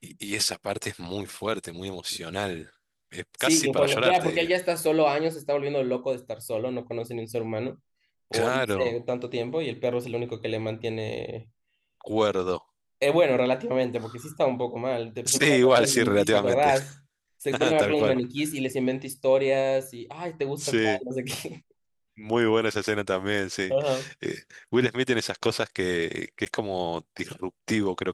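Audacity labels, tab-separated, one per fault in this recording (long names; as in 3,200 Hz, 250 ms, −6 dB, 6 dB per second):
26.450000	26.460000	drop-out 8.8 ms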